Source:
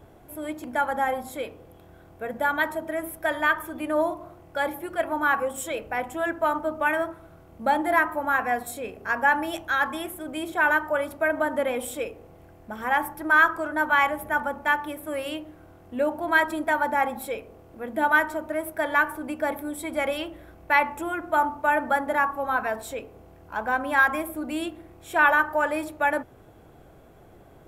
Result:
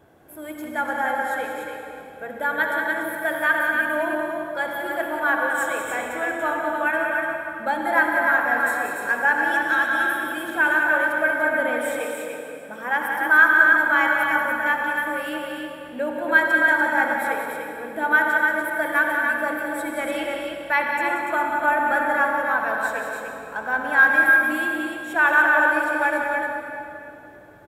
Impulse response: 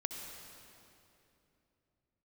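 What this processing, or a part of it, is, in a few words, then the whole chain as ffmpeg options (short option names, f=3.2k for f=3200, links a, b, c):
stadium PA: -filter_complex "[0:a]highpass=f=160:p=1,equalizer=f=1.6k:t=o:w=0.25:g=7.5,aecho=1:1:183.7|291.5:0.447|0.562[a];[1:a]atrim=start_sample=2205[b];[a][b]afir=irnorm=-1:irlink=0,asettb=1/sr,asplit=3[c][d][e];[c]atrim=end=12.004[f];[d]atrim=start=12:end=13.63,asetpts=PTS-STARTPTS,afade=t=in:d=0.004:c=qsin,afade=t=out:st=1.626:d=0.004:c=qsin,highpass=150[g];[e]atrim=start=13.626[h];[f][g]acrossfade=d=0.004:c1=hsin:c2=qsin[i];[i][h]acrossfade=d=0.004:c1=qsin:c2=hsin,volume=-1dB"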